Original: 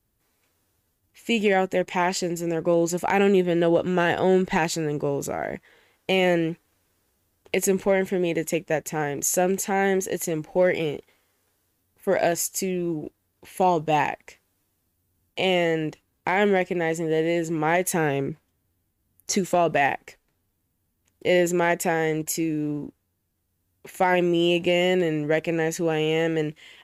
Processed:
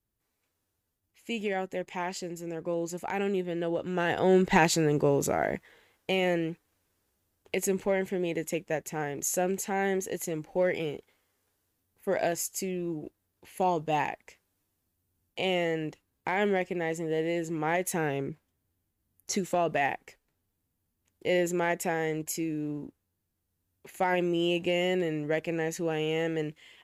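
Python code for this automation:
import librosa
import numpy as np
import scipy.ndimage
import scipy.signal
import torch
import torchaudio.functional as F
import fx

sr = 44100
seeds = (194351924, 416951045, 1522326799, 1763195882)

y = fx.gain(x, sr, db=fx.line((3.77, -10.5), (4.58, 1.0), (5.43, 1.0), (6.18, -6.5)))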